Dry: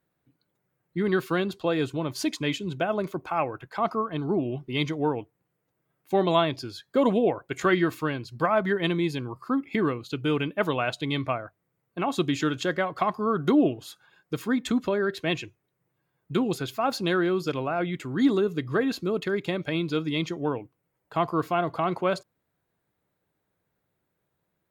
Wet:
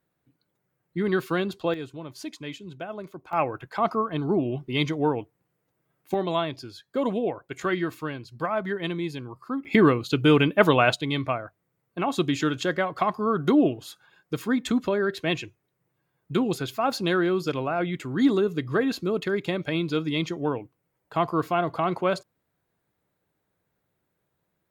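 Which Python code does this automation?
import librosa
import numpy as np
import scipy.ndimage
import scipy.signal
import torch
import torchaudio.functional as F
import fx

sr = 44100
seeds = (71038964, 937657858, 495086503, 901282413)

y = fx.gain(x, sr, db=fx.steps((0.0, 0.0), (1.74, -9.0), (3.33, 2.0), (6.14, -4.0), (9.65, 7.5), (10.96, 1.0)))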